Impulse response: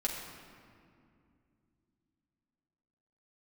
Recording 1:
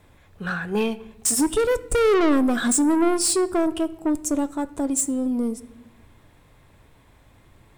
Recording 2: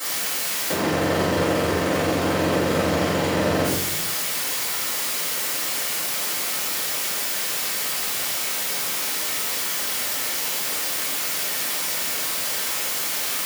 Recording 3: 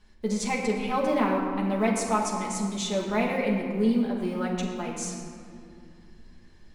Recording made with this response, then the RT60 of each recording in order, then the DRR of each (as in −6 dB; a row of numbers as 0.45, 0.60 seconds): 3; non-exponential decay, 0.70 s, 2.4 s; 14.0, −13.0, −3.5 decibels